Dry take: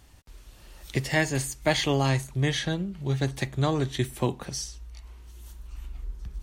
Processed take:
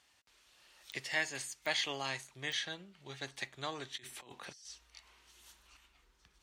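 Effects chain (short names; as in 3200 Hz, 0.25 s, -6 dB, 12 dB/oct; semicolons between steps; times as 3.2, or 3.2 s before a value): band-pass 3000 Hz, Q 0.53; 3.97–5.77 negative-ratio compressor -47 dBFS, ratio -1; pops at 0.92/1.66/2.52, -24 dBFS; gain -5.5 dB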